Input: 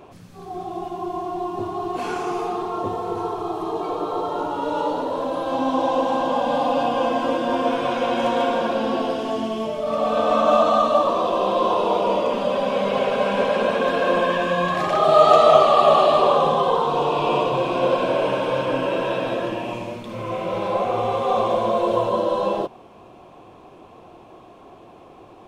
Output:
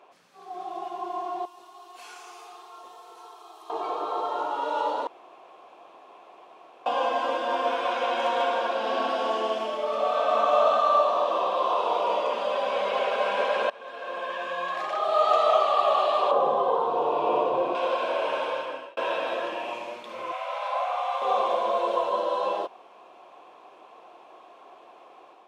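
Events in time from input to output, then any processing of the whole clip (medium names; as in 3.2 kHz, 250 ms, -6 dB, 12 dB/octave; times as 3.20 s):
1.45–3.70 s: pre-emphasis filter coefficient 0.9
5.07–6.86 s: room tone
8.77–11.36 s: reverb throw, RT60 2.7 s, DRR -0.5 dB
13.70–15.47 s: fade in, from -21.5 dB
16.31–17.75 s: tilt shelf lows +10 dB
18.42–18.97 s: fade out
20.32–21.22 s: elliptic high-pass 600 Hz, stop band 50 dB
whole clip: level rider gain up to 5 dB; high-pass 640 Hz 12 dB/octave; treble shelf 7.5 kHz -10 dB; trim -5.5 dB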